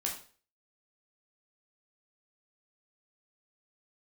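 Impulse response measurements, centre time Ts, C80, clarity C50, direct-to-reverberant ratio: 25 ms, 12.0 dB, 7.0 dB, -1.5 dB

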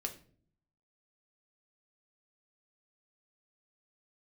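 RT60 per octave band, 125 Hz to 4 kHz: 0.95, 0.80, 0.60, 0.40, 0.40, 0.35 s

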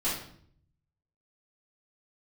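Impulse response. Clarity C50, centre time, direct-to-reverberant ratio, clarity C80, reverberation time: 2.5 dB, 46 ms, -12.0 dB, 7.5 dB, 0.60 s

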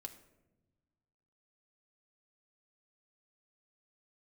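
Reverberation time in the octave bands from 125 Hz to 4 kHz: 2.1, 1.8, 1.3, 0.85, 0.75, 0.50 s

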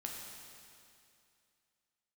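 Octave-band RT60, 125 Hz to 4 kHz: 2.5, 2.5, 2.5, 2.5, 2.5, 2.5 s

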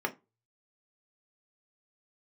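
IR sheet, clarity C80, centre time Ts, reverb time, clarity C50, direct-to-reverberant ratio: 27.5 dB, 6 ms, 0.25 s, 19.0 dB, 2.5 dB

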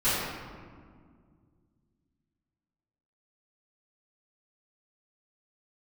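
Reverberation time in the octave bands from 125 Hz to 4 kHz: 3.2, 2.9, 2.1, 1.8, 1.4, 0.95 s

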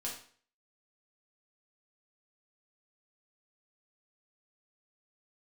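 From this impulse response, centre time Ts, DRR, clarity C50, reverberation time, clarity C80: 31 ms, -4.5 dB, 5.0 dB, 0.50 s, 10.0 dB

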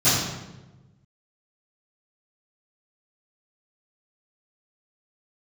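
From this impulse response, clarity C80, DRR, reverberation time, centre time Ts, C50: 2.5 dB, -20.0 dB, 1.1 s, 77 ms, 0.0 dB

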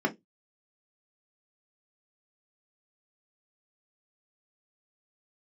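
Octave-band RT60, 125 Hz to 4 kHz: 0.25, 0.20, 0.20, 0.15, 0.15, 0.15 s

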